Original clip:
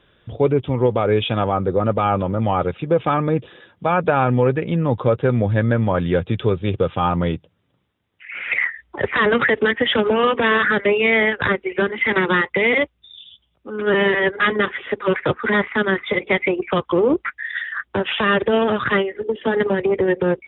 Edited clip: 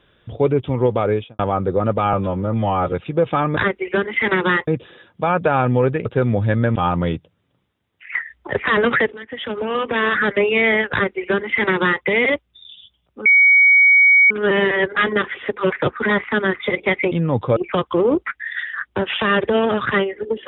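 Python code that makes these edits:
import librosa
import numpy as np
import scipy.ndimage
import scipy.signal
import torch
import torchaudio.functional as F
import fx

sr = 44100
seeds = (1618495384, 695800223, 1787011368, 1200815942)

y = fx.studio_fade_out(x, sr, start_s=1.03, length_s=0.36)
y = fx.edit(y, sr, fx.stretch_span(start_s=2.13, length_s=0.53, factor=1.5),
    fx.move(start_s=4.68, length_s=0.45, to_s=16.55),
    fx.cut(start_s=5.83, length_s=1.12),
    fx.cut(start_s=8.34, length_s=0.29),
    fx.fade_in_from(start_s=9.61, length_s=1.18, floor_db=-21.5),
    fx.duplicate(start_s=11.41, length_s=1.11, to_s=3.3),
    fx.insert_tone(at_s=13.74, length_s=1.05, hz=2250.0, db=-8.0), tone=tone)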